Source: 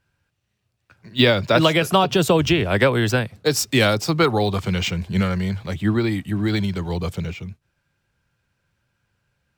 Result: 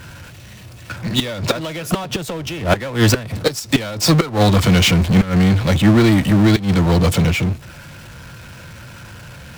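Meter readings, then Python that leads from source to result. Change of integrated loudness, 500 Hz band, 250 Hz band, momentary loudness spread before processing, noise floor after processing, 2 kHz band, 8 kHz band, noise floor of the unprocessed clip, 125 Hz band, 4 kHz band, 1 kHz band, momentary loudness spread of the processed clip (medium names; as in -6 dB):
+3.5 dB, -0.5 dB, +6.0 dB, 10 LU, -38 dBFS, +1.0 dB, +5.0 dB, -74 dBFS, +7.0 dB, +2.5 dB, 0.0 dB, 10 LU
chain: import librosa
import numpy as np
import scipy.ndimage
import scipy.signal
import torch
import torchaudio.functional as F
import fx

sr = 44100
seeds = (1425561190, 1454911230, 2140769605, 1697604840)

y = fx.gate_flip(x, sr, shuts_db=-9.0, range_db=-33)
y = fx.notch_comb(y, sr, f0_hz=400.0)
y = fx.power_curve(y, sr, exponent=0.5)
y = y * 10.0 ** (4.5 / 20.0)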